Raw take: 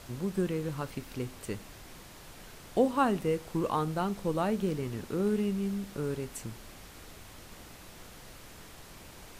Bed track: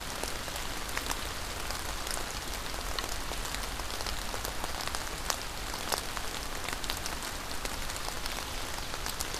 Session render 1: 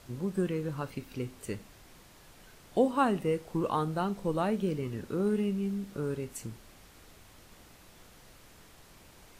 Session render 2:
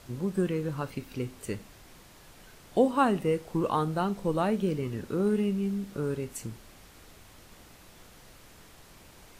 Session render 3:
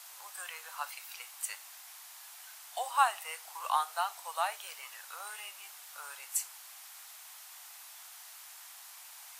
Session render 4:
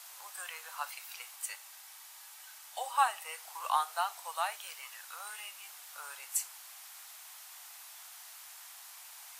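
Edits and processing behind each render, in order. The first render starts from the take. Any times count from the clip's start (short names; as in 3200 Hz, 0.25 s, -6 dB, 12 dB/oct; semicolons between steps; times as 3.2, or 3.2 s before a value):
noise print and reduce 6 dB
gain +2.5 dB
steep high-pass 730 Hz 48 dB/oct; high shelf 5900 Hz +12 dB
1.36–3.38 notch comb 350 Hz; 4.34–5.68 low shelf 370 Hz -11.5 dB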